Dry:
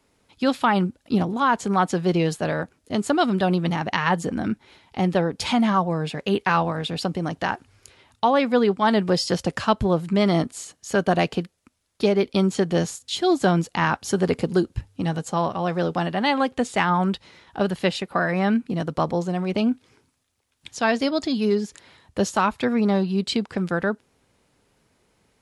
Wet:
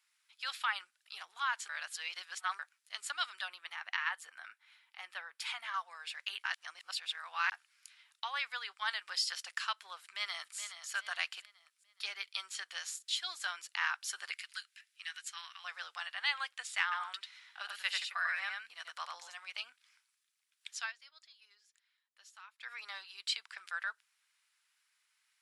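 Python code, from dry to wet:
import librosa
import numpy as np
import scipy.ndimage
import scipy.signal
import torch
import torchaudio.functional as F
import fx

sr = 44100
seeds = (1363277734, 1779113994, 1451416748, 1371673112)

y = fx.peak_eq(x, sr, hz=5700.0, db=-8.0, octaves=1.9, at=(3.48, 5.74))
y = fx.echo_throw(y, sr, start_s=9.98, length_s=0.59, ms=420, feedback_pct=40, wet_db=-9.5)
y = fx.highpass_res(y, sr, hz=1900.0, q=1.5, at=(14.3, 15.63), fade=0.02)
y = fx.echo_single(y, sr, ms=92, db=-3.5, at=(16.91, 19.33), fade=0.02)
y = fx.edit(y, sr, fx.reverse_span(start_s=1.69, length_s=0.9),
    fx.reverse_span(start_s=6.44, length_s=1.08),
    fx.fade_down_up(start_s=20.78, length_s=1.96, db=-19.5, fade_s=0.15), tone=tone)
y = scipy.signal.sosfilt(scipy.signal.butter(4, 1400.0, 'highpass', fs=sr, output='sos'), y)
y = fx.notch(y, sr, hz=6500.0, q=24.0)
y = F.gain(torch.from_numpy(y), -6.5).numpy()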